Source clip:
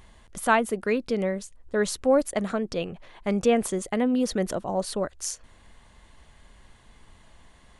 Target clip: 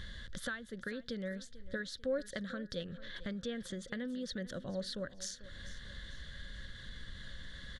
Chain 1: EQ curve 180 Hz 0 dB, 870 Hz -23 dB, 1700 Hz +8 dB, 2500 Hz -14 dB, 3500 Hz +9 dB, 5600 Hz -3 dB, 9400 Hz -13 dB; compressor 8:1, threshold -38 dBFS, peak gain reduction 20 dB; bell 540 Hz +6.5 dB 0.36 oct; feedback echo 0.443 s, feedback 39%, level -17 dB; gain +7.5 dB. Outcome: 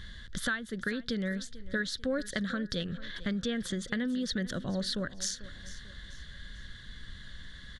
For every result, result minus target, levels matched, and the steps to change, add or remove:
compressor: peak gain reduction -9 dB; 500 Hz band -5.5 dB
change: compressor 8:1, threshold -48 dBFS, peak gain reduction 28.5 dB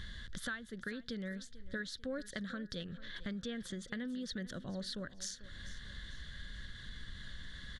500 Hz band -4.5 dB
change: bell 540 Hz +15 dB 0.36 oct

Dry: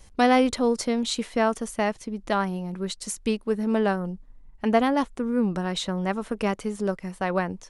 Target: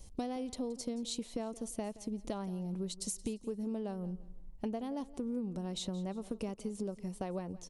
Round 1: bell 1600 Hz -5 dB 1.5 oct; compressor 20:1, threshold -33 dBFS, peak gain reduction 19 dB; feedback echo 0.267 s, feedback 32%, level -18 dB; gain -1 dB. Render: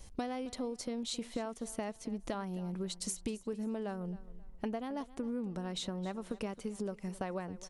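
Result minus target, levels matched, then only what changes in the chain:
echo 94 ms late; 2000 Hz band +7.0 dB
change: bell 1600 Hz -16 dB 1.5 oct; change: feedback echo 0.173 s, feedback 32%, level -18 dB

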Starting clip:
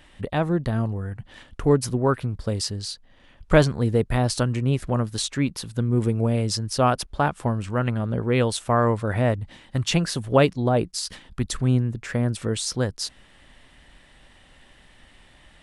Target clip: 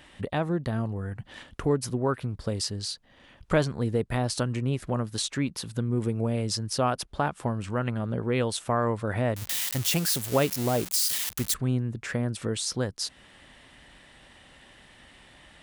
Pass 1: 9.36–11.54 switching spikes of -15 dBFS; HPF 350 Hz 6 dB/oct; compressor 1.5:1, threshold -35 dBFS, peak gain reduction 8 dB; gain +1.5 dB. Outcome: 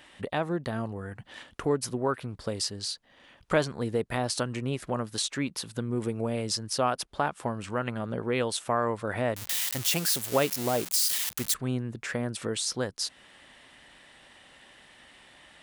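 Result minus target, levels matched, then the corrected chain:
125 Hz band -5.0 dB
9.36–11.54 switching spikes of -15 dBFS; HPF 90 Hz 6 dB/oct; compressor 1.5:1, threshold -35 dBFS, peak gain reduction 9 dB; gain +1.5 dB

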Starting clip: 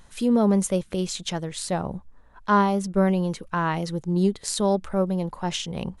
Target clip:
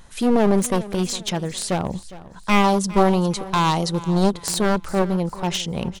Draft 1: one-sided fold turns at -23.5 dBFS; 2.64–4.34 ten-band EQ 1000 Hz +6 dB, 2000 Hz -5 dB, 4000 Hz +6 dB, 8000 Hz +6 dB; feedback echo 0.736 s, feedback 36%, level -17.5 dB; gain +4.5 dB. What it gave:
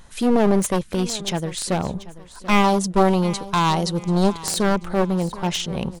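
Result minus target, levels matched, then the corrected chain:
echo 0.328 s late
one-sided fold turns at -23.5 dBFS; 2.64–4.34 ten-band EQ 1000 Hz +6 dB, 2000 Hz -5 dB, 4000 Hz +6 dB, 8000 Hz +6 dB; feedback echo 0.408 s, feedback 36%, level -17.5 dB; gain +4.5 dB

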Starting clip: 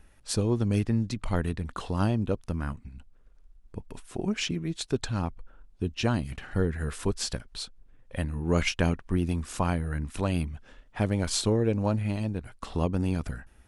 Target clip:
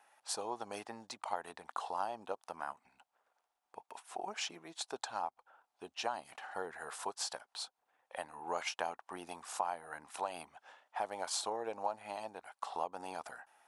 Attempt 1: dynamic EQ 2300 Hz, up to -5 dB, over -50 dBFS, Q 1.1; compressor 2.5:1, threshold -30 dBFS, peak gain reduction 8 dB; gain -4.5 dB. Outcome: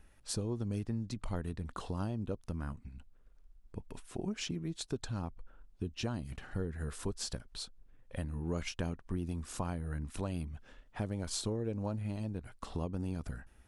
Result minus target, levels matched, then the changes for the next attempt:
1000 Hz band -12.0 dB
add after dynamic EQ: resonant high-pass 800 Hz, resonance Q 3.9

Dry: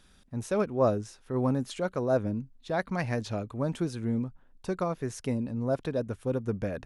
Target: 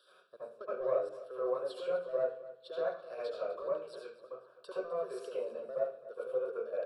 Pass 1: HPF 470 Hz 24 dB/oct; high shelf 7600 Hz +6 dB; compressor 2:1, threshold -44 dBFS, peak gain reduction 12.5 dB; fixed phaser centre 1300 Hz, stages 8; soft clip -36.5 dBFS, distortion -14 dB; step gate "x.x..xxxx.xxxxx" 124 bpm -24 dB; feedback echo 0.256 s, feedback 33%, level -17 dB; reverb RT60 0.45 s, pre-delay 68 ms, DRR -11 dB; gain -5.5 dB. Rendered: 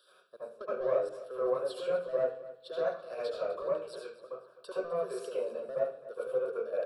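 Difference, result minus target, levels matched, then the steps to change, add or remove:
8000 Hz band +4.5 dB; compressor: peak gain reduction -4 dB
change: high shelf 7600 Hz -2 dB; change: compressor 2:1, threshold -52 dBFS, peak gain reduction 16.5 dB

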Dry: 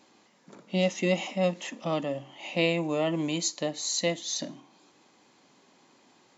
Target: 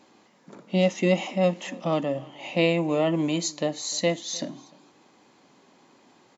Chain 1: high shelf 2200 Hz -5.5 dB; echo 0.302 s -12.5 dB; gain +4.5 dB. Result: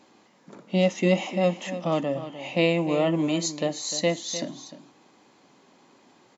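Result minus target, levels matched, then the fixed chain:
echo-to-direct +11 dB
high shelf 2200 Hz -5.5 dB; echo 0.302 s -23.5 dB; gain +4.5 dB

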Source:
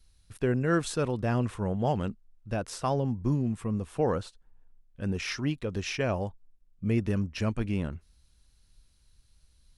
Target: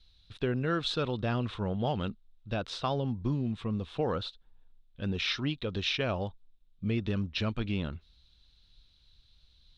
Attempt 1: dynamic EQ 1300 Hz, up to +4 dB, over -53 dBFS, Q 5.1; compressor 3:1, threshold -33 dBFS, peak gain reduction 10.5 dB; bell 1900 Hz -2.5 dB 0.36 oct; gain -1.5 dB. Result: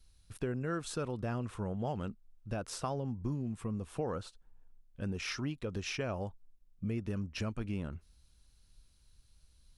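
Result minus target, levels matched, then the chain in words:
4000 Hz band -6.0 dB; compressor: peak gain reduction +5.5 dB
dynamic EQ 1300 Hz, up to +4 dB, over -53 dBFS, Q 5.1; synth low-pass 3700 Hz, resonance Q 5.7; compressor 3:1, threshold -24.5 dBFS, peak gain reduction 5 dB; bell 1900 Hz -2.5 dB 0.36 oct; gain -1.5 dB

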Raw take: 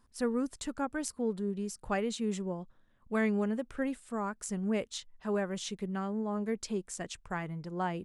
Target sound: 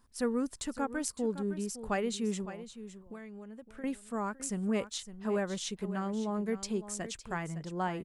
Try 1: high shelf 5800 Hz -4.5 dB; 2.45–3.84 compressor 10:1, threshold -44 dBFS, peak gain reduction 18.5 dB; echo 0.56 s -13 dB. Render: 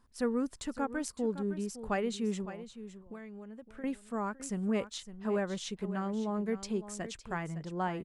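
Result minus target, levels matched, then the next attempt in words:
8000 Hz band -4.5 dB
high shelf 5800 Hz +3.5 dB; 2.45–3.84 compressor 10:1, threshold -44 dBFS, peak gain reduction 18.5 dB; echo 0.56 s -13 dB

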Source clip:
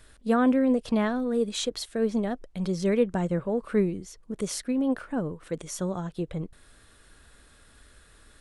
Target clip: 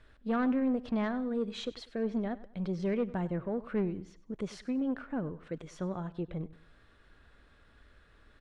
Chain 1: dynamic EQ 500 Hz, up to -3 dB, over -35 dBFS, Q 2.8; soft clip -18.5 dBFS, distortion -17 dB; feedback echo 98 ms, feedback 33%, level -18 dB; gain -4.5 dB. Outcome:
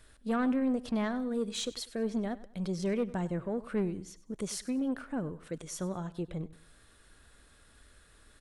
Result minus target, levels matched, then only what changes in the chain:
4000 Hz band +5.0 dB
add after dynamic EQ: LPF 3000 Hz 12 dB/oct

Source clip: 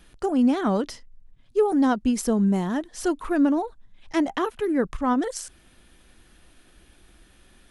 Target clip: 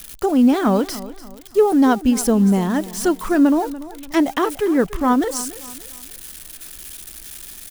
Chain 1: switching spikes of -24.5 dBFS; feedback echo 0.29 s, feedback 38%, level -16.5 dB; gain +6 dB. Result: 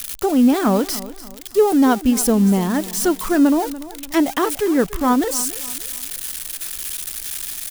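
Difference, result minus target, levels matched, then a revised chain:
switching spikes: distortion +8 dB
switching spikes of -33 dBFS; feedback echo 0.29 s, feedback 38%, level -16.5 dB; gain +6 dB

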